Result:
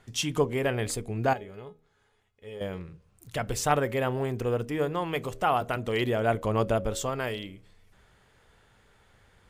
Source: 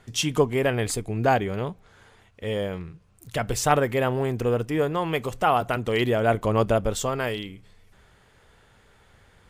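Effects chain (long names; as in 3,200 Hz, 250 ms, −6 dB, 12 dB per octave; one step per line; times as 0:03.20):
0:01.33–0:02.61: tuned comb filter 420 Hz, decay 0.22 s, harmonics all, mix 80%
hum removal 79.06 Hz, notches 8
level −4 dB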